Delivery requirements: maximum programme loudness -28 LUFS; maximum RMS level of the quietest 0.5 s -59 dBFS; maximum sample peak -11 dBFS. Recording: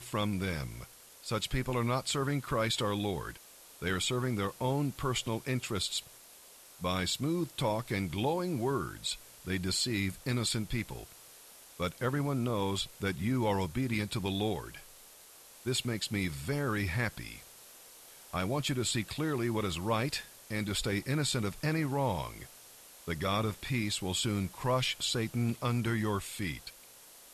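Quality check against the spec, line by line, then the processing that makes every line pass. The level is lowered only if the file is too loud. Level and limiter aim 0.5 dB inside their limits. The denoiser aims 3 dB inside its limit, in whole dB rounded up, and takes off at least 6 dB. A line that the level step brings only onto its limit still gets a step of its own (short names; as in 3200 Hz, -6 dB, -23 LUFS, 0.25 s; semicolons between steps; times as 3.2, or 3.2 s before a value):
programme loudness -33.0 LUFS: OK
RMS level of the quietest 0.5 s -55 dBFS: fail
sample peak -19.0 dBFS: OK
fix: denoiser 7 dB, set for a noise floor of -55 dBFS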